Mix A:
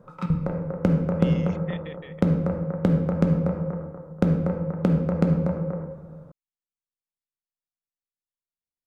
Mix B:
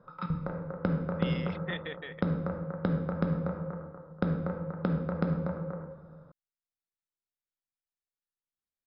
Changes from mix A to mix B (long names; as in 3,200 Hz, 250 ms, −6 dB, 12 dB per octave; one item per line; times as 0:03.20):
speech +9.0 dB
master: add Chebyshev low-pass with heavy ripple 5,200 Hz, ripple 9 dB